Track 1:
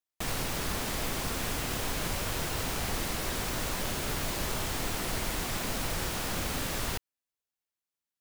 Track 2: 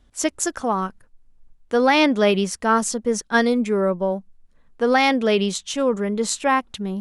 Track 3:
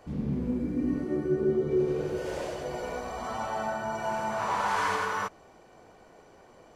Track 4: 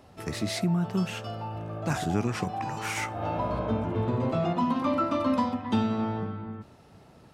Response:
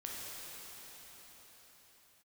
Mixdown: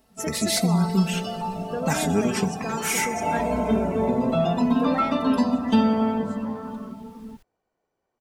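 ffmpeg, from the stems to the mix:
-filter_complex "[0:a]adelay=450,volume=-16dB[a];[1:a]asoftclip=type=hard:threshold=-13dB,acompressor=threshold=-22dB:ratio=6,volume=-6dB,afade=t=out:st=4.93:d=0.64:silence=0.251189,asplit=2[b][c];[2:a]acompressor=threshold=-31dB:ratio=6,adelay=1650,volume=-12dB[d];[3:a]aemphasis=mode=production:type=50fm,aecho=1:1:4.5:0.79,volume=0dB,asplit=2[e][f];[f]volume=-4dB[g];[c]apad=whole_len=381672[h];[a][h]sidechaincompress=threshold=-41dB:ratio=8:attack=16:release=531[i];[4:a]atrim=start_sample=2205[j];[g][j]afir=irnorm=-1:irlink=0[k];[i][b][d][e][k]amix=inputs=5:normalize=0,afftdn=nr=13:nf=-35,adynamicequalizer=threshold=0.00631:dfrequency=1200:dqfactor=4.9:tfrequency=1200:tqfactor=4.9:attack=5:release=100:ratio=0.375:range=3:mode=cutabove:tftype=bell"

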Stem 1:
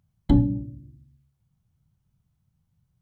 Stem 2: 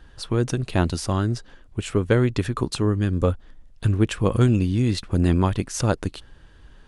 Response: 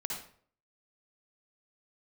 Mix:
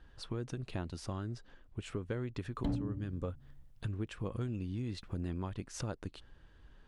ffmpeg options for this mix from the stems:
-filter_complex "[0:a]adelay=2350,volume=0dB[a];[1:a]highshelf=f=7.4k:g=-11,volume=-10dB[b];[a][b]amix=inputs=2:normalize=0,asoftclip=type=hard:threshold=-13.5dB,acompressor=threshold=-37dB:ratio=3"

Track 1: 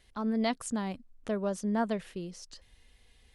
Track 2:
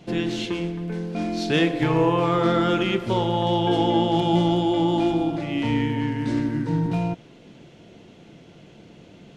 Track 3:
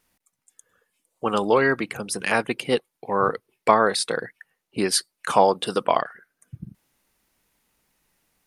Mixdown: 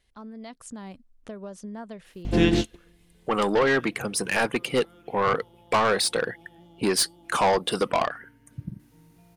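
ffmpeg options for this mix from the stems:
-filter_complex "[0:a]acompressor=threshold=-32dB:ratio=6,volume=-6.5dB,asplit=2[a][b];[1:a]aeval=exprs='val(0)+0.0224*(sin(2*PI*50*n/s)+sin(2*PI*2*50*n/s)/2+sin(2*PI*3*50*n/s)/3+sin(2*PI*4*50*n/s)/4+sin(2*PI*5*50*n/s)/5)':c=same,adelay=2250,volume=2dB[c];[2:a]asoftclip=type=tanh:threshold=-18.5dB,adelay=2050,volume=-1.5dB[d];[b]apad=whole_len=512339[e];[c][e]sidechaingate=range=-39dB:threshold=-58dB:ratio=16:detection=peak[f];[a][f][d]amix=inputs=3:normalize=0,dynaudnorm=f=130:g=9:m=4dB"

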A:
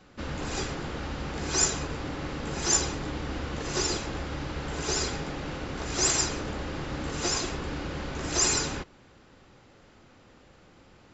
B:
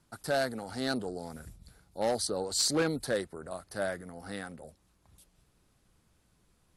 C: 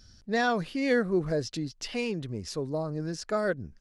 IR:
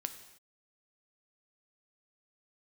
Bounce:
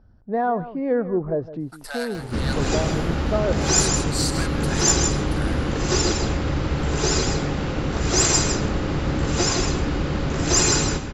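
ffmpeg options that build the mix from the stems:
-filter_complex "[0:a]lowshelf=f=330:g=7.5,acompressor=mode=upward:threshold=-36dB:ratio=2.5,adelay=2150,volume=-1.5dB,asplit=2[a][b];[b]volume=-6.5dB[c];[1:a]highpass=f=850:w=0.5412,highpass=f=850:w=1.3066,adelay=1600,volume=-4.5dB,afade=t=out:st=5.56:d=0.31:silence=0.251189,asplit=2[d][e];[e]volume=-9dB[f];[2:a]acontrast=64,lowpass=f=880:t=q:w=1.7,volume=-11dB,asplit=2[g][h];[h]volume=-15dB[i];[c][f][i]amix=inputs=3:normalize=0,aecho=0:1:159:1[j];[a][d][g][j]amix=inputs=4:normalize=0,acontrast=75"

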